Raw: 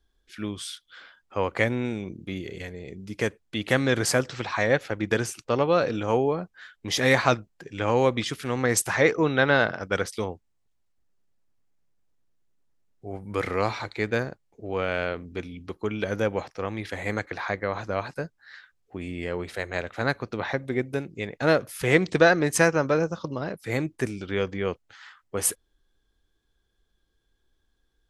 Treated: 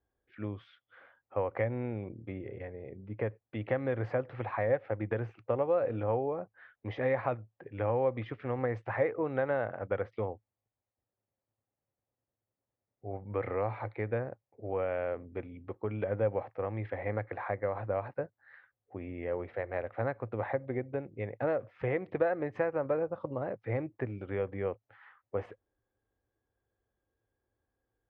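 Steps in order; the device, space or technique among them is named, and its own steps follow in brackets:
0:02.32–0:03.26: low-pass filter 2,900 Hz 6 dB per octave
bass amplifier (downward compressor 3 to 1, threshold −25 dBFS, peak gain reduction 9.5 dB; loudspeaker in its box 76–2,100 Hz, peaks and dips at 110 Hz +10 dB, 170 Hz −7 dB, 540 Hz +8 dB, 770 Hz +5 dB, 1,500 Hz −4 dB)
level −6.5 dB

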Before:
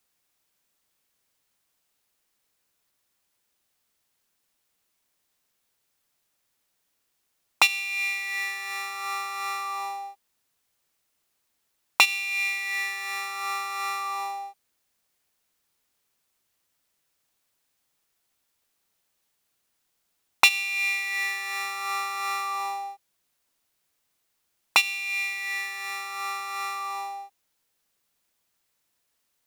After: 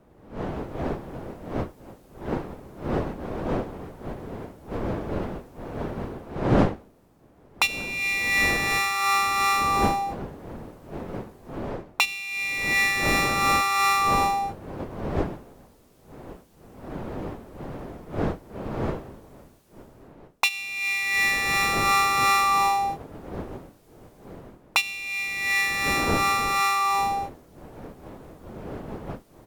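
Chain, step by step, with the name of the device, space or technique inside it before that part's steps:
smartphone video outdoors (wind on the microphone 480 Hz −39 dBFS; automatic gain control gain up to 16 dB; level −6 dB; AAC 96 kbit/s 48,000 Hz)

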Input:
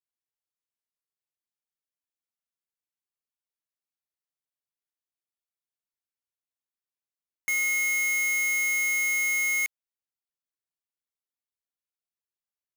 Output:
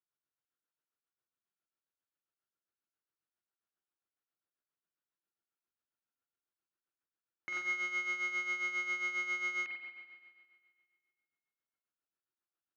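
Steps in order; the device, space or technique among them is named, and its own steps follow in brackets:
combo amplifier with spring reverb and tremolo (spring reverb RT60 1.9 s, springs 43 ms, chirp 70 ms, DRR 2.5 dB; amplitude tremolo 7.4 Hz, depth 64%; loudspeaker in its box 95–3,800 Hz, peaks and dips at 97 Hz +6 dB, 340 Hz +8 dB, 1,400 Hz +8 dB, 2,200 Hz −6 dB, 3,400 Hz −4 dB)

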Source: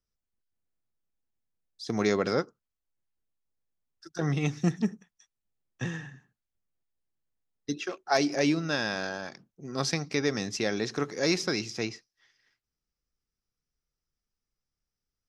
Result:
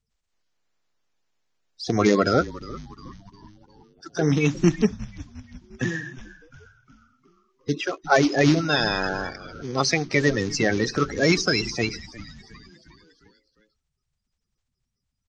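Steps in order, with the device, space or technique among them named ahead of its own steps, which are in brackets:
echo with shifted repeats 356 ms, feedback 53%, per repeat −130 Hz, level −17 dB
clip after many re-uploads (low-pass filter 7,500 Hz 24 dB per octave; spectral magnitudes quantised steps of 30 dB)
level +8 dB

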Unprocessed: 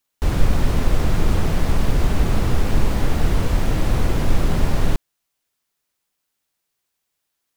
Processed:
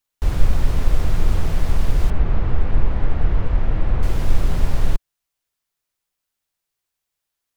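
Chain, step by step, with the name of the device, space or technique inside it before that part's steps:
low shelf boost with a cut just above (low-shelf EQ 75 Hz +7.5 dB; parametric band 240 Hz −3.5 dB 1.2 octaves)
0:02.10–0:04.03: low-pass filter 2,300 Hz 12 dB per octave
level −4.5 dB

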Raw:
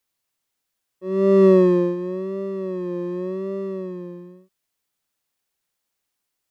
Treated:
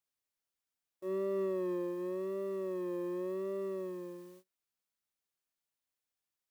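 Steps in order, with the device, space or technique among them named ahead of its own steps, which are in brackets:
baby monitor (band-pass filter 310–3,500 Hz; downward compressor, threshold −26 dBFS, peak gain reduction 13.5 dB; white noise bed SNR 28 dB; noise gate −49 dBFS, range −24 dB)
level −6.5 dB

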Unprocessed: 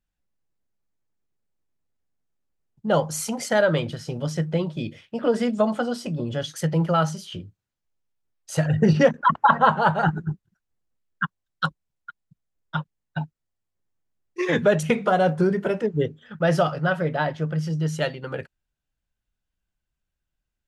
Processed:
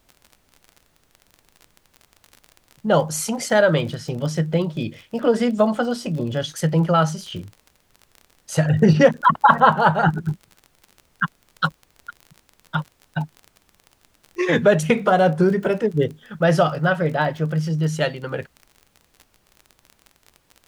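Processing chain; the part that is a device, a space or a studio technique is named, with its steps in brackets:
vinyl LP (surface crackle 31 per second −34 dBFS; pink noise bed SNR 41 dB)
level +3.5 dB

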